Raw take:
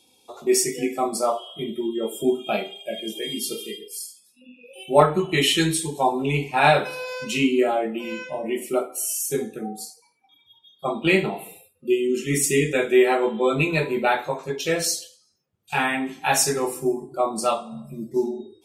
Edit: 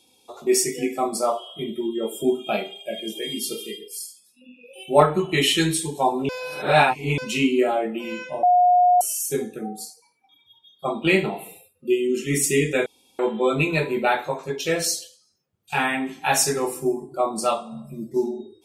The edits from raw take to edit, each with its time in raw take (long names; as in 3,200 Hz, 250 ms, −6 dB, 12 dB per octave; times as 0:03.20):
0:06.29–0:07.18: reverse
0:08.43–0:09.01: beep over 718 Hz −12.5 dBFS
0:12.86–0:13.19: fill with room tone